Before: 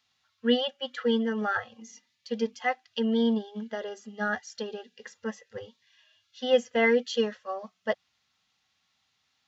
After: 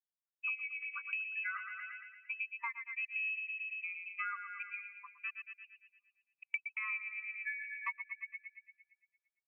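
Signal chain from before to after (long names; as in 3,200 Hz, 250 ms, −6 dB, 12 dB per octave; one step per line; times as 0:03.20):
spectral dynamics exaggerated over time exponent 2
pitch shifter −1 semitone
gate pattern "..xxxxxxx.x.xxx." 133 BPM −60 dB
comb filter 3.7 ms, depth 44%
on a send: bucket-brigade delay 114 ms, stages 1,024, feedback 58%, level −9 dB
on the sum: voice inversion scrambler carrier 2,800 Hz
linear-phase brick-wall high-pass 930 Hz
downward compressor 6 to 1, threshold −44 dBFS, peak gain reduction 23.5 dB
level +6 dB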